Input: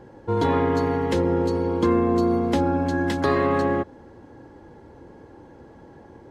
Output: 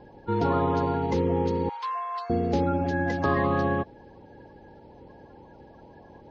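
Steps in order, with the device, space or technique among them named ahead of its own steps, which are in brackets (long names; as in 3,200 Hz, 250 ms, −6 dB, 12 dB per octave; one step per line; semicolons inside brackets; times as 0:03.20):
clip after many re-uploads (low-pass filter 5,300 Hz 24 dB per octave; spectral magnitudes quantised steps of 30 dB)
0:01.69–0:02.30: Butterworth high-pass 830 Hz 36 dB per octave
level −2.5 dB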